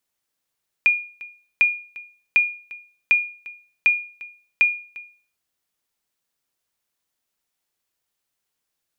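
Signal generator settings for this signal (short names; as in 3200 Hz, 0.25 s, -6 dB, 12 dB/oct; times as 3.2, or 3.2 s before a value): sonar ping 2430 Hz, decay 0.42 s, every 0.75 s, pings 6, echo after 0.35 s, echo -20 dB -9 dBFS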